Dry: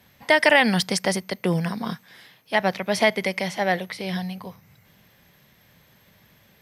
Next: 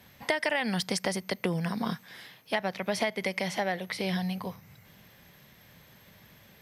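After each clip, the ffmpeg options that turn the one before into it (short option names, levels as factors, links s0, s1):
-af "acompressor=threshold=0.0447:ratio=6,volume=1.12"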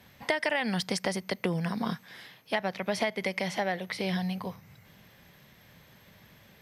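-af "highshelf=f=7900:g=-5"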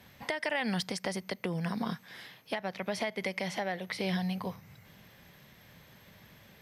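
-af "alimiter=limit=0.0944:level=0:latency=1:release=353"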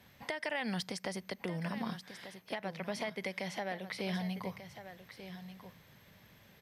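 -af "aecho=1:1:1190:0.266,volume=0.596"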